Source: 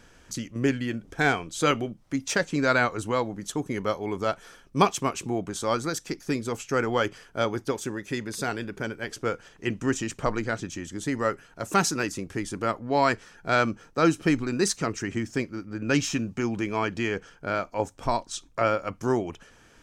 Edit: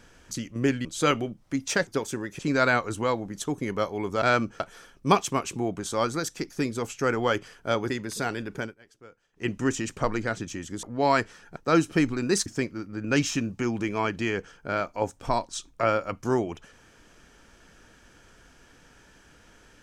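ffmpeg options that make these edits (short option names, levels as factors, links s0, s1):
-filter_complex "[0:a]asplit=12[s0][s1][s2][s3][s4][s5][s6][s7][s8][s9][s10][s11];[s0]atrim=end=0.852[s12];[s1]atrim=start=1.448:end=2.472[s13];[s2]atrim=start=7.598:end=8.122[s14];[s3]atrim=start=2.468:end=4.302[s15];[s4]atrim=start=13.478:end=13.862[s16];[s5]atrim=start=4.298:end=7.602[s17];[s6]atrim=start=8.118:end=8.97,asetpts=PTS-STARTPTS,afade=t=out:st=0.712:d=0.14:silence=0.0841395[s18];[s7]atrim=start=8.97:end=9.55,asetpts=PTS-STARTPTS,volume=0.0841[s19];[s8]atrim=start=9.55:end=11.052,asetpts=PTS-STARTPTS,afade=t=in:d=0.14:silence=0.0841395[s20];[s9]atrim=start=12.748:end=13.482[s21];[s10]atrim=start=13.858:end=14.762[s22];[s11]atrim=start=15.238[s23];[s12][s13]acrossfade=d=0.004:c1=hsin:c2=hsin[s24];[s24][s14]acrossfade=d=0.004:c1=hsin:c2=hsin[s25];[s25][s15]acrossfade=d=0.004:c1=hsin:c2=hsin[s26];[s26][s16]acrossfade=d=0.004:c1=hsin:c2=hsin[s27];[s27][s17]acrossfade=d=0.004:c1=hsin:c2=hsin[s28];[s18][s19][s20]concat=n=3:v=0:a=1[s29];[s28][s29]acrossfade=d=0.004:c1=hsin:c2=hsin[s30];[s30][s21]acrossfade=d=0.004:c1=hsin:c2=hsin[s31];[s31][s22]acrossfade=d=0.004:c1=hsin:c2=hsin[s32];[s32][s23]acrossfade=d=0.004:c1=hsin:c2=hsin"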